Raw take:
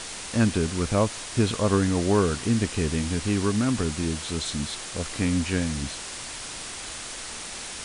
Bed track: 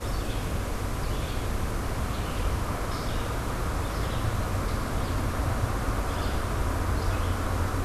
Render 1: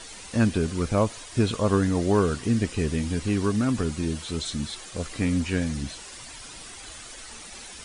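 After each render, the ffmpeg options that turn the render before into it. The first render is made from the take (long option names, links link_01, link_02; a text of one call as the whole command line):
ffmpeg -i in.wav -af "afftdn=noise_reduction=10:noise_floor=-37" out.wav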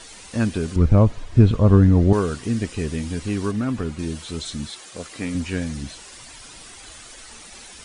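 ffmpeg -i in.wav -filter_complex "[0:a]asettb=1/sr,asplit=3[link_01][link_02][link_03];[link_01]atrim=end=0.764[link_04];[link_02]atrim=start=0.76:end=2.13,asetpts=PTS-STARTPTS,afade=type=in:duration=0.004:curve=qsin,afade=type=out:start_time=1.366:duration=0.004:curve=qsin,aemphasis=mode=reproduction:type=riaa[link_05];[link_03]atrim=start=2.126[link_06];[link_04][link_05]acrossfade=duration=0.004:curve1=hsin:curve2=qsin[link_07];[link_07][link_06]acrossfade=duration=0.004:curve1=qsin:curve2=hsin,asettb=1/sr,asplit=3[link_08][link_09][link_10];[link_08]atrim=end=3.514[link_11];[link_09]atrim=start=3.51:end=3.99,asetpts=PTS-STARTPTS,afade=type=in:duration=0.004:curve=qsin,afade=type=out:start_time=0.476:duration=0.004:curve=qsin,acrossover=split=3400[link_12][link_13];[link_13]acompressor=threshold=-50dB:ratio=4:attack=1:release=60[link_14];[link_12][link_14]amix=inputs=2:normalize=0[link_15];[link_10]atrim=start=3.986[link_16];[link_11][link_15]acrossfade=duration=0.004:curve1=hsin:curve2=qsin[link_17];[link_17][link_16]acrossfade=duration=0.004:curve1=qsin:curve2=hsin,asettb=1/sr,asplit=3[link_18][link_19][link_20];[link_18]atrim=end=4.694[link_21];[link_19]atrim=start=4.69:end=5.35,asetpts=PTS-STARTPTS,afade=type=in:duration=0.004:curve=qsin,afade=type=out:start_time=0.656:duration=0.004:curve=qsin,highpass=frequency=230:poles=1[link_22];[link_20]atrim=start=5.346[link_23];[link_21][link_22]acrossfade=duration=0.004:curve1=hsin:curve2=qsin[link_24];[link_24][link_23]acrossfade=duration=0.004:curve1=qsin:curve2=hsin" out.wav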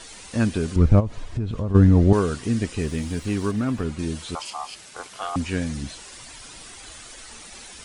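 ffmpeg -i in.wav -filter_complex "[0:a]asplit=3[link_01][link_02][link_03];[link_01]afade=type=out:start_time=0.99:duration=0.02[link_04];[link_02]acompressor=threshold=-23dB:ratio=6:attack=3.2:release=140:knee=1:detection=peak,afade=type=in:start_time=0.99:duration=0.02,afade=type=out:start_time=1.74:duration=0.02[link_05];[link_03]afade=type=in:start_time=1.74:duration=0.02[link_06];[link_04][link_05][link_06]amix=inputs=3:normalize=0,asettb=1/sr,asplit=3[link_07][link_08][link_09];[link_07]atrim=end=2.814[link_10];[link_08]atrim=start=2.81:end=3.84,asetpts=PTS-STARTPTS,afade=type=in:duration=0.004:curve=qsin,afade=type=out:start_time=1.026:duration=0.004:curve=qsin,aeval=exprs='sgn(val(0))*max(abs(val(0))-0.00355,0)':channel_layout=same[link_11];[link_09]atrim=start=3.836[link_12];[link_10][link_11]acrossfade=duration=0.004:curve1=hsin:curve2=qsin[link_13];[link_13][link_12]acrossfade=duration=0.004:curve1=qsin:curve2=hsin,asettb=1/sr,asplit=3[link_14][link_15][link_16];[link_14]atrim=end=4.354[link_17];[link_15]atrim=start=4.35:end=5.36,asetpts=PTS-STARTPTS,afade=type=in:duration=0.004:curve=qsin,afade=type=out:start_time=1.006:duration=0.004:curve=qsin,aeval=exprs='val(0)*sin(2*PI*960*n/s)':channel_layout=same[link_18];[link_16]atrim=start=5.356[link_19];[link_17][link_18]acrossfade=duration=0.004:curve1=hsin:curve2=qsin[link_20];[link_20][link_19]acrossfade=duration=0.004:curve1=qsin:curve2=hsin" out.wav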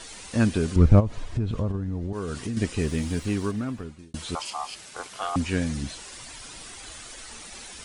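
ffmpeg -i in.wav -filter_complex "[0:a]asettb=1/sr,asplit=3[link_01][link_02][link_03];[link_01]atrim=end=1.714[link_04];[link_02]atrim=start=1.71:end=2.57,asetpts=PTS-STARTPTS,afade=type=in:duration=0.004:curve=qsin,afade=type=out:start_time=0.856:duration=0.004:curve=qsin,acompressor=threshold=-26dB:ratio=10:attack=3.2:release=140:knee=1:detection=peak[link_05];[link_03]atrim=start=2.566[link_06];[link_04][link_05]acrossfade=duration=0.004:curve1=hsin:curve2=qsin[link_07];[link_07][link_06]acrossfade=duration=0.004:curve1=qsin:curve2=hsin,asplit=2[link_08][link_09];[link_08]atrim=end=4.14,asetpts=PTS-STARTPTS,afade=type=out:start_time=3.17:duration=0.97[link_10];[link_09]atrim=start=4.14,asetpts=PTS-STARTPTS,afade=type=in:duration=0.004:curve=hsin[link_11];[link_10][link_11]concat=n=2:v=0:a=1" out.wav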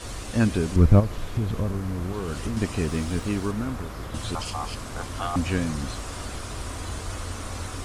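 ffmpeg -i in.wav -i bed.wav -filter_complex "[1:a]volume=-6.5dB[link_01];[0:a][link_01]amix=inputs=2:normalize=0" out.wav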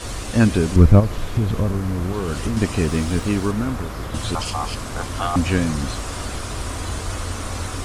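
ffmpeg -i in.wav -af "volume=6dB,alimiter=limit=-1dB:level=0:latency=1" out.wav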